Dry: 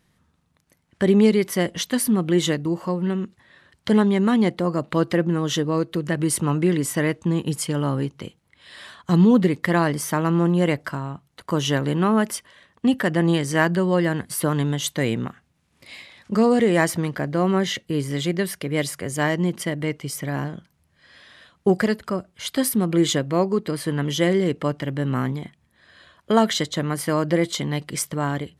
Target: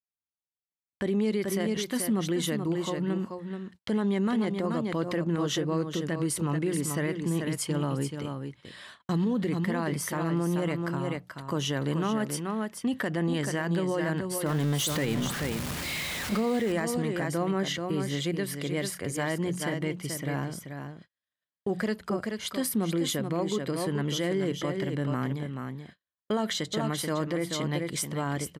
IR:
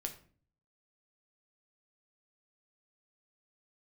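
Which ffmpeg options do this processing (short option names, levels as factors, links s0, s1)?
-filter_complex "[0:a]asettb=1/sr,asplit=3[s0][s1][s2];[s0]atrim=end=14.464[s3];[s1]atrim=start=14.46:end=16.4,asetpts=PTS-STARTPTS,afade=t=in:d=0.004:c=qsin,afade=t=out:st=1.936:d=0.004:c=qsin,aeval=exprs='val(0)+0.5*0.0631*sgn(val(0))':c=same[s4];[s2]atrim=start=16.396[s5];[s3][s4]acrossfade=d=0.004:c1=hsin:c2=qsin[s6];[s6][s5]acrossfade=d=0.004:c1=qsin:c2=hsin,bandreject=f=60:t=h:w=6,bandreject=f=120:t=h:w=6,bandreject=f=180:t=h:w=6,asplit=2[s7][s8];[s8]aecho=0:1:432:0.422[s9];[s7][s9]amix=inputs=2:normalize=0,alimiter=limit=0.178:level=0:latency=1:release=52,agate=range=0.00794:threshold=0.00708:ratio=16:detection=peak,volume=0.562"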